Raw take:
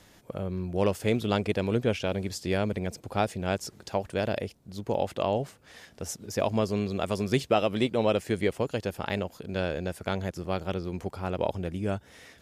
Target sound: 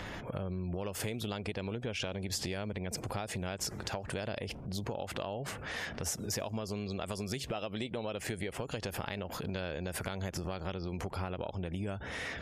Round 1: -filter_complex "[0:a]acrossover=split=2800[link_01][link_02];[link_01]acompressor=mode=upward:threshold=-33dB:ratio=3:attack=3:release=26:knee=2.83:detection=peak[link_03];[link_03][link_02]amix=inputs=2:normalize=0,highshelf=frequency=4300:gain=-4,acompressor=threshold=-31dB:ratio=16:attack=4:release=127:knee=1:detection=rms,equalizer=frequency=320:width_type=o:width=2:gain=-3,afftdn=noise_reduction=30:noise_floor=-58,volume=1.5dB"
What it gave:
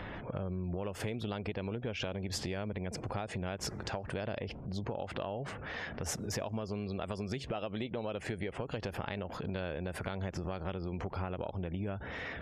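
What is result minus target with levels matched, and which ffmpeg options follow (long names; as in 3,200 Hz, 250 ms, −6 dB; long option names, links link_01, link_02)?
8,000 Hz band −4.0 dB
-filter_complex "[0:a]acrossover=split=2800[link_01][link_02];[link_01]acompressor=mode=upward:threshold=-33dB:ratio=3:attack=3:release=26:knee=2.83:detection=peak[link_03];[link_03][link_02]amix=inputs=2:normalize=0,highshelf=frequency=4300:gain=7.5,acompressor=threshold=-31dB:ratio=16:attack=4:release=127:knee=1:detection=rms,equalizer=frequency=320:width_type=o:width=2:gain=-3,afftdn=noise_reduction=30:noise_floor=-58,volume=1.5dB"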